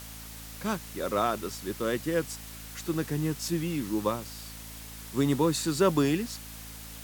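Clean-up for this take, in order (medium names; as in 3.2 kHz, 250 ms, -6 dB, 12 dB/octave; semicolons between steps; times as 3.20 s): de-hum 54.9 Hz, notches 5; noise reduction 30 dB, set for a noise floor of -44 dBFS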